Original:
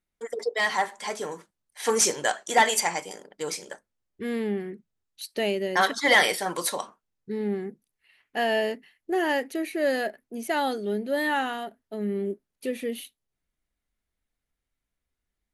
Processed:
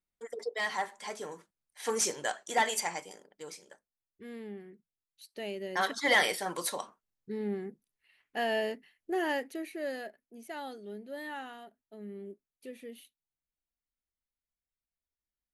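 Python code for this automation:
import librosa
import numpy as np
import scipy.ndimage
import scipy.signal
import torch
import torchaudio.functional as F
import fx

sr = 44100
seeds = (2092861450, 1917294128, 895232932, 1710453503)

y = fx.gain(x, sr, db=fx.line((2.97, -8.0), (3.62, -15.0), (5.25, -15.0), (5.98, -6.0), (9.28, -6.0), (10.22, -15.0)))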